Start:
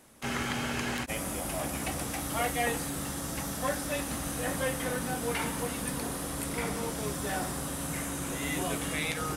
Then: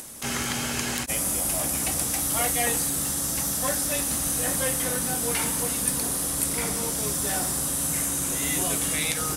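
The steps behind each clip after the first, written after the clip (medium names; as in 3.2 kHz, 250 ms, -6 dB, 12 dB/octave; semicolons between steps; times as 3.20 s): tone controls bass +1 dB, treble +12 dB; upward compressor, threshold -34 dBFS; trim +1.5 dB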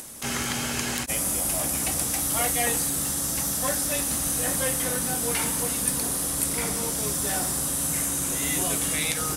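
no audible change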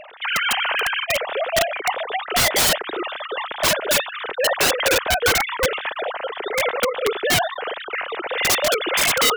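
formants replaced by sine waves; integer overflow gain 19 dB; trim +7 dB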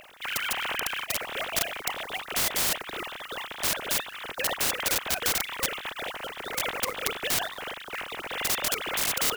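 spectral contrast reduction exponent 0.31; trim -8.5 dB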